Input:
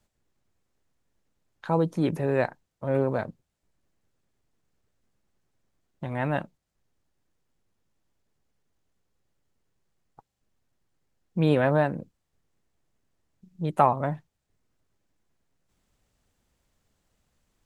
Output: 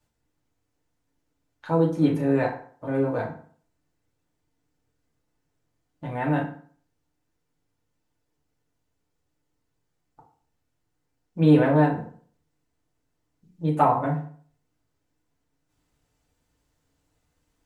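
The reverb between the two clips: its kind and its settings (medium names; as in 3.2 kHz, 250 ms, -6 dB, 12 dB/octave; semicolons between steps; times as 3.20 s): FDN reverb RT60 0.5 s, low-frequency decay 1×, high-frequency decay 0.7×, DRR -3.5 dB; trim -4.5 dB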